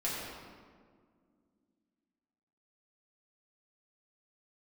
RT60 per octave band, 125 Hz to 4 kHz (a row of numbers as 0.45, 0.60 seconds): 2.5, 3.3, 2.1, 1.7, 1.3, 1.1 seconds